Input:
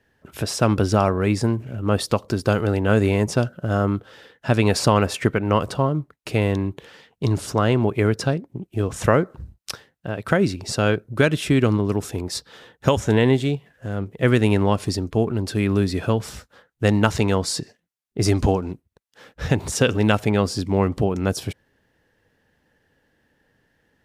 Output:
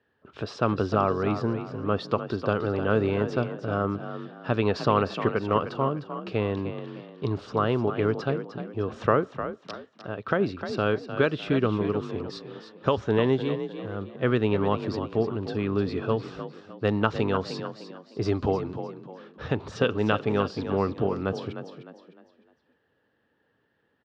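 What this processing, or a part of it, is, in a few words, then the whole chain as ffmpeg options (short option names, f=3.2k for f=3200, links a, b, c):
frequency-shifting delay pedal into a guitar cabinet: -filter_complex "[0:a]asplit=5[a][b][c][d][e];[b]adelay=304,afreqshift=38,volume=-10dB[f];[c]adelay=608,afreqshift=76,volume=-18.9dB[g];[d]adelay=912,afreqshift=114,volume=-27.7dB[h];[e]adelay=1216,afreqshift=152,volume=-36.6dB[i];[a][f][g][h][i]amix=inputs=5:normalize=0,highpass=100,equalizer=f=160:t=q:w=4:g=-4,equalizer=f=430:t=q:w=4:g=4,equalizer=f=1.2k:t=q:w=4:g=7,equalizer=f=2.1k:t=q:w=4:g=-5,lowpass=f=4.2k:w=0.5412,lowpass=f=4.2k:w=1.3066,volume=-6.5dB"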